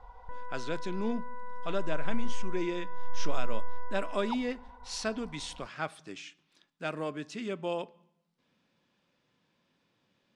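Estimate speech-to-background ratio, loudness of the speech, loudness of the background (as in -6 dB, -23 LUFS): 9.0 dB, -36.5 LUFS, -45.5 LUFS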